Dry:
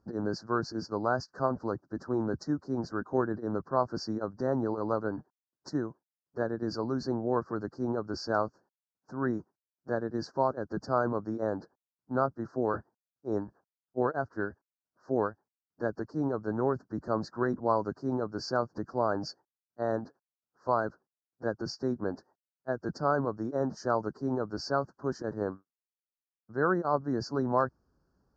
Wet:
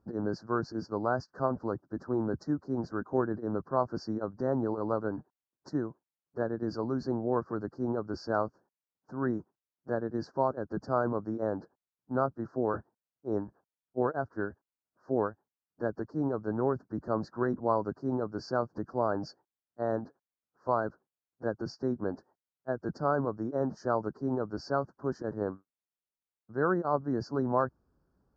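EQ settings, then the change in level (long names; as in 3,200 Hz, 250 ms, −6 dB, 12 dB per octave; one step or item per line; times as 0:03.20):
high-shelf EQ 2,500 Hz −9.5 dB
0.0 dB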